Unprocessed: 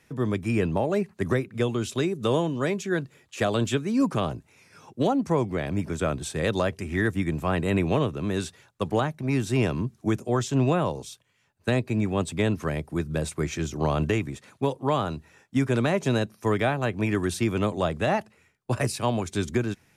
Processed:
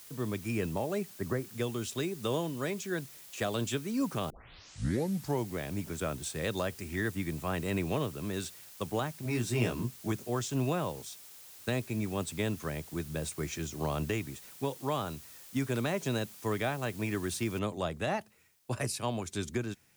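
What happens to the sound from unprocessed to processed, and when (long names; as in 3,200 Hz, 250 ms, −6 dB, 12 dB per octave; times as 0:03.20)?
0:01.10–0:01.56: low-pass filter 1,800 Hz 24 dB per octave
0:04.30: tape start 1.17 s
0:09.24–0:10.12: double-tracking delay 17 ms −2.5 dB
0:17.59: noise floor change −49 dB −68 dB
whole clip: high-shelf EQ 3,700 Hz +7 dB; level −8.5 dB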